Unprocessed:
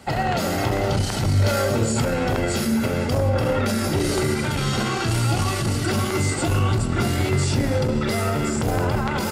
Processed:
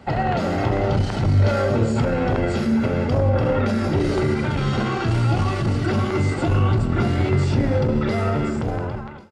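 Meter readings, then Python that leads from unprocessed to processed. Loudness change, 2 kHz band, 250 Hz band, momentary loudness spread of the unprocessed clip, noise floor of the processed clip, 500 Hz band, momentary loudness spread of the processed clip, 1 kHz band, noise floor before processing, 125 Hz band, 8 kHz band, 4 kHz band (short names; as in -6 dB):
+1.0 dB, -2.0 dB, +1.5 dB, 2 LU, -27 dBFS, +1.0 dB, 3 LU, 0.0 dB, -25 dBFS, +2.0 dB, -14.0 dB, -6.0 dB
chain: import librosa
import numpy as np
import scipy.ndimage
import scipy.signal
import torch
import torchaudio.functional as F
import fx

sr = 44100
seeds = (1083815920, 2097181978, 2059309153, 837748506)

y = fx.fade_out_tail(x, sr, length_s=0.96)
y = fx.spacing_loss(y, sr, db_at_10k=22)
y = y * 10.0 ** (2.5 / 20.0)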